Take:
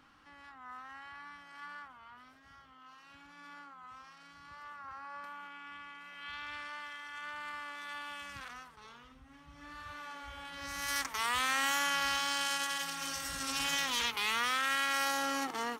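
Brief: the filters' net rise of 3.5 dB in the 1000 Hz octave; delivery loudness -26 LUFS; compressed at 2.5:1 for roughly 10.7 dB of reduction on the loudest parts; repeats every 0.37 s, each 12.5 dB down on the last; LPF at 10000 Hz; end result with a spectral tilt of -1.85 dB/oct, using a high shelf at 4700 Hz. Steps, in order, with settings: LPF 10000 Hz; bell 1000 Hz +4 dB; high shelf 4700 Hz +9 dB; compressor 2.5:1, threshold -41 dBFS; feedback echo 0.37 s, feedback 24%, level -12.5 dB; gain +15.5 dB

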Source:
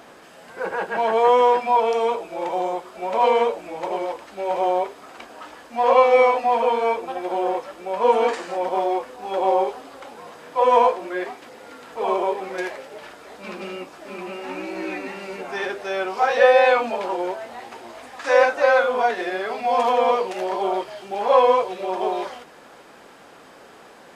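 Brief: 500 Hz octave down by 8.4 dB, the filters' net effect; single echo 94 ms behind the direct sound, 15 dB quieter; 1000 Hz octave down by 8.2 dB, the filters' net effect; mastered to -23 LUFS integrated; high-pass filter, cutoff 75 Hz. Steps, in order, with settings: HPF 75 Hz; bell 500 Hz -7.5 dB; bell 1000 Hz -7.5 dB; echo 94 ms -15 dB; gain +5.5 dB

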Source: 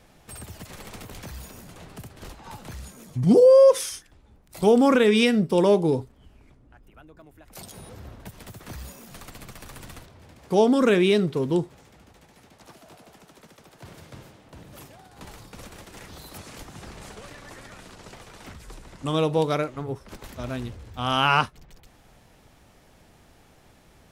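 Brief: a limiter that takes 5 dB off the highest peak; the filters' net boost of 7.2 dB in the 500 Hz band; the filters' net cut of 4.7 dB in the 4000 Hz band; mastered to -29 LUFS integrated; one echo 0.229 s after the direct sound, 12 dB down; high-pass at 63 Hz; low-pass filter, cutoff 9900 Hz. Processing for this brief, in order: HPF 63 Hz; LPF 9900 Hz; bell 500 Hz +8 dB; bell 4000 Hz -7 dB; limiter -5.5 dBFS; echo 0.229 s -12 dB; gain -12 dB

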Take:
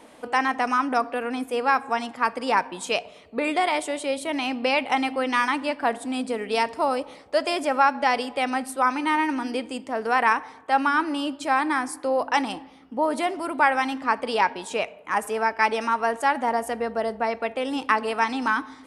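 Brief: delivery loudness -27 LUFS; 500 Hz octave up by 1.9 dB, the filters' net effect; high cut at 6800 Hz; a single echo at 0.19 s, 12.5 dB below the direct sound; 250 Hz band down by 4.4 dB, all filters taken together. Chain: LPF 6800 Hz; bell 250 Hz -6 dB; bell 500 Hz +3.5 dB; echo 0.19 s -12.5 dB; gain -3 dB

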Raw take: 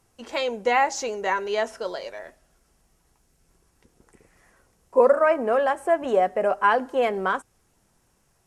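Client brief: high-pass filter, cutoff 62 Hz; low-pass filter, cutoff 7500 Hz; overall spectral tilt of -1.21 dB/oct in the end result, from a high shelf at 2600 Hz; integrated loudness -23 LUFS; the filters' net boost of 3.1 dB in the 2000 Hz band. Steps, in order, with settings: HPF 62 Hz; LPF 7500 Hz; bell 2000 Hz +5.5 dB; high shelf 2600 Hz -4 dB; gain -0.5 dB

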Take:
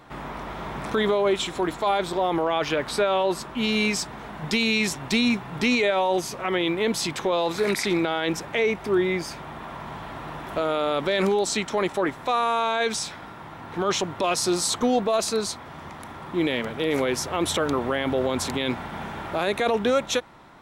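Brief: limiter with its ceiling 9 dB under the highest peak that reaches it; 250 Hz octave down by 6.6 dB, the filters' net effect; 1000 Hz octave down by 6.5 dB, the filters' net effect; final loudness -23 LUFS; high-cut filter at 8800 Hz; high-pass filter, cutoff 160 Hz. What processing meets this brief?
HPF 160 Hz; LPF 8800 Hz; bell 250 Hz -7.5 dB; bell 1000 Hz -8.5 dB; gain +9 dB; limiter -13 dBFS

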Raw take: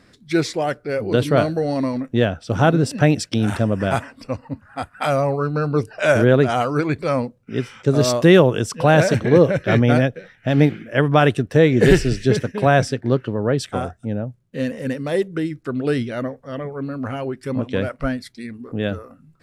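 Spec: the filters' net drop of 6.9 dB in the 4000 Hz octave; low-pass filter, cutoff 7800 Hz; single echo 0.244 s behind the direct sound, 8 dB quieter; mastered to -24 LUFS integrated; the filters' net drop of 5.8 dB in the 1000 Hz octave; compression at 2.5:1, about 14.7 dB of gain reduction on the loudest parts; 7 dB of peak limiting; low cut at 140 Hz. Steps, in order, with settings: HPF 140 Hz; LPF 7800 Hz; bell 1000 Hz -9 dB; bell 4000 Hz -8.5 dB; compressor 2.5:1, threshold -32 dBFS; limiter -22 dBFS; echo 0.244 s -8 dB; gain +9 dB

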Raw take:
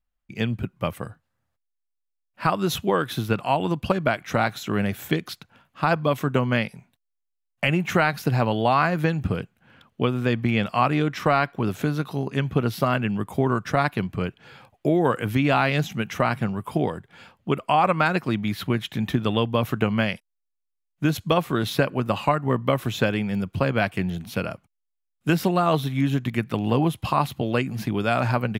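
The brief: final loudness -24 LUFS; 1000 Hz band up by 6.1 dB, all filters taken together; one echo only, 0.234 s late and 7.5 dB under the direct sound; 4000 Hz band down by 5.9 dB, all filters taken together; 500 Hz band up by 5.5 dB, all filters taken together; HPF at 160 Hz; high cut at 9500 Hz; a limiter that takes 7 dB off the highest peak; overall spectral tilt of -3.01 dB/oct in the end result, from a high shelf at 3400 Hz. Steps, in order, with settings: HPF 160 Hz; LPF 9500 Hz; bell 500 Hz +5 dB; bell 1000 Hz +7 dB; high shelf 3400 Hz -3.5 dB; bell 4000 Hz -6.5 dB; limiter -7.5 dBFS; echo 0.234 s -7.5 dB; gain -2 dB

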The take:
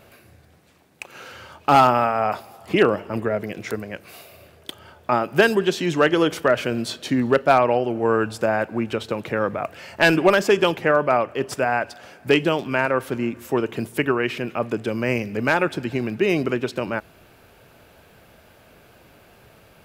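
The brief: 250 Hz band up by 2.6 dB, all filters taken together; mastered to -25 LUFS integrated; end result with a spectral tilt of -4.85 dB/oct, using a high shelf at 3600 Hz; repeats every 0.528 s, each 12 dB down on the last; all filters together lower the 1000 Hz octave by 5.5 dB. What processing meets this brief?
bell 250 Hz +4 dB; bell 1000 Hz -8 dB; high shelf 3600 Hz -3.5 dB; feedback echo 0.528 s, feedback 25%, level -12 dB; gain -3 dB

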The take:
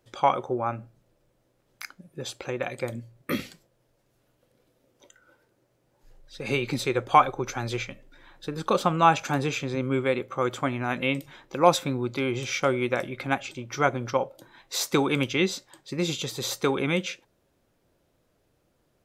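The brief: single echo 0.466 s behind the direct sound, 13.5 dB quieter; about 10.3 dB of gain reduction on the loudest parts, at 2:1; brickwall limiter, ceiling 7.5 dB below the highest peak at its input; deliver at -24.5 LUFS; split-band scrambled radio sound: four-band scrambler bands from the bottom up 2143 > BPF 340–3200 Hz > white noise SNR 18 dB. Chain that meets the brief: compressor 2:1, threshold -31 dBFS; limiter -20.5 dBFS; echo 0.466 s -13.5 dB; four-band scrambler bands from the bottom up 2143; BPF 340–3200 Hz; white noise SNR 18 dB; gain +8.5 dB

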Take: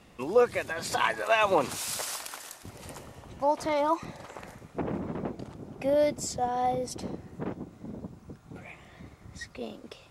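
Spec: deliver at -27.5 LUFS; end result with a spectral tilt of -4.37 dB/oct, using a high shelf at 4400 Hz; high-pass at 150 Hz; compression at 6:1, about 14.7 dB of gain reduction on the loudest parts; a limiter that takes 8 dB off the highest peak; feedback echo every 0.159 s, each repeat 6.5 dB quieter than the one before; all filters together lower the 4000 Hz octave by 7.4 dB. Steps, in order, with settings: HPF 150 Hz; bell 4000 Hz -6.5 dB; high shelf 4400 Hz -7 dB; compressor 6:1, threshold -33 dBFS; limiter -29.5 dBFS; feedback echo 0.159 s, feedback 47%, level -6.5 dB; gain +13 dB

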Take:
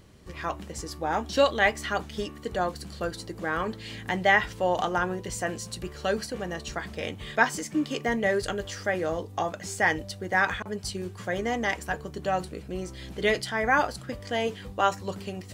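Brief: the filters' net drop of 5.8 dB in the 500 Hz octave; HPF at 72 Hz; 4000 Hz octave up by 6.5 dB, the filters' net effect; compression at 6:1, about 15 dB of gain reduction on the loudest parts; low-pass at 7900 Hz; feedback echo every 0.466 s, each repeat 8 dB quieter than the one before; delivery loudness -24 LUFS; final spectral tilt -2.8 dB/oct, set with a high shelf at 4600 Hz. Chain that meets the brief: HPF 72 Hz; LPF 7900 Hz; bell 500 Hz -7.5 dB; bell 4000 Hz +5 dB; high shelf 4600 Hz +8 dB; compressor 6:1, threshold -32 dBFS; feedback echo 0.466 s, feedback 40%, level -8 dB; gain +11.5 dB

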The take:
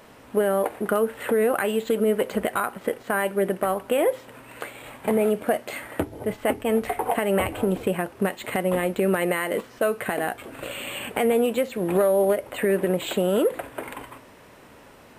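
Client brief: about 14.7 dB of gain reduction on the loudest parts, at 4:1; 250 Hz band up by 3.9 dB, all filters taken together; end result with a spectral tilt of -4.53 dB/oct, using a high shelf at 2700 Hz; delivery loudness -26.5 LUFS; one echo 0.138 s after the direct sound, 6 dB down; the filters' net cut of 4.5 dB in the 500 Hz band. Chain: bell 250 Hz +7 dB; bell 500 Hz -8 dB; high shelf 2700 Hz +3.5 dB; compressor 4:1, threshold -36 dBFS; echo 0.138 s -6 dB; gain +10.5 dB

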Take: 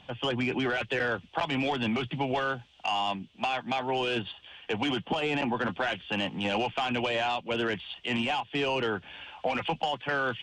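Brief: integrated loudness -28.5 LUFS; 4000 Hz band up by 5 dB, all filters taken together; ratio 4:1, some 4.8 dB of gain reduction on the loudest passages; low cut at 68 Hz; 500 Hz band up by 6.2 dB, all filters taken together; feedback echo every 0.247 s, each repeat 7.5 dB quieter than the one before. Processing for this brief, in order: HPF 68 Hz; bell 500 Hz +7.5 dB; bell 4000 Hz +7.5 dB; compressor 4:1, threshold -26 dBFS; feedback echo 0.247 s, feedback 42%, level -7.5 dB; gain +0.5 dB

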